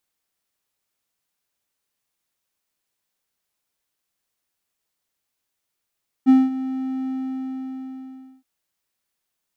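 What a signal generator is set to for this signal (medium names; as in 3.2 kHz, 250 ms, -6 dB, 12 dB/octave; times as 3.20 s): ADSR triangle 262 Hz, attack 32 ms, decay 204 ms, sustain -15.5 dB, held 0.82 s, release 1350 ms -6 dBFS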